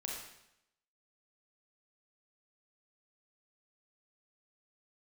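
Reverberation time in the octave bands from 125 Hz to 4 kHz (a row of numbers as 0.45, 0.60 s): 0.80, 0.85, 0.80, 0.80, 0.80, 0.80 s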